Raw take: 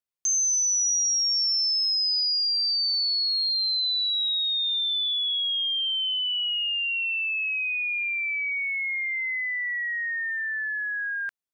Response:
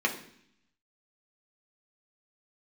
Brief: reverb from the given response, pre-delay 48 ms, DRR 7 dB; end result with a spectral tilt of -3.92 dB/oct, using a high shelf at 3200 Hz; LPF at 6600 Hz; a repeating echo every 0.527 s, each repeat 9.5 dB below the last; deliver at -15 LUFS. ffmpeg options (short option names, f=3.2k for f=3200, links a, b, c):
-filter_complex "[0:a]lowpass=6.6k,highshelf=f=3.2k:g=4,aecho=1:1:527|1054|1581|2108:0.335|0.111|0.0365|0.012,asplit=2[a][b];[1:a]atrim=start_sample=2205,adelay=48[c];[b][c]afir=irnorm=-1:irlink=0,volume=-17.5dB[d];[a][d]amix=inputs=2:normalize=0,volume=5.5dB"